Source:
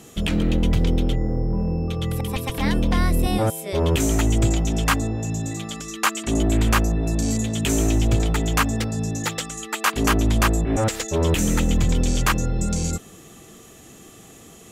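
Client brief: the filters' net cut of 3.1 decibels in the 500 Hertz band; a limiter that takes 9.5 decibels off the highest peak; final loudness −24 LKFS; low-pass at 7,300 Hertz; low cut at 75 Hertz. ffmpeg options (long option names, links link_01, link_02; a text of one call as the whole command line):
ffmpeg -i in.wav -af "highpass=75,lowpass=7300,equalizer=frequency=500:width_type=o:gain=-4,volume=2.5dB,alimiter=limit=-13.5dB:level=0:latency=1" out.wav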